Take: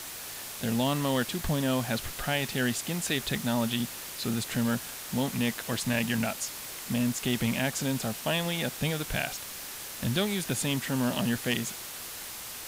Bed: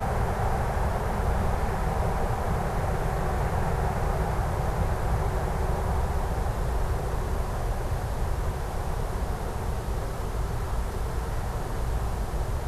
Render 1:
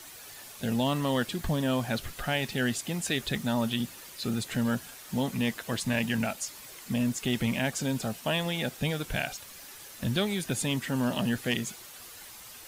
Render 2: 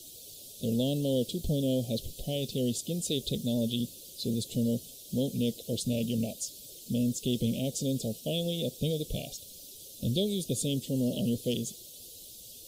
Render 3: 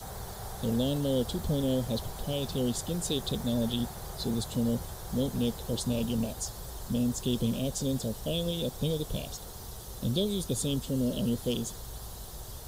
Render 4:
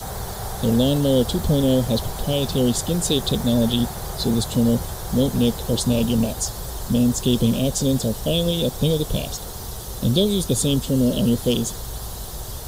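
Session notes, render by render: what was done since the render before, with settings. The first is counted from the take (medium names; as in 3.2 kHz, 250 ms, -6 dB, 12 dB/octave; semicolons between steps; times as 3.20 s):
noise reduction 9 dB, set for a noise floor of -41 dBFS
Chebyshev band-stop 550–3400 Hz, order 3; dynamic bell 470 Hz, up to +4 dB, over -46 dBFS, Q 3.7
add bed -15 dB
trim +10.5 dB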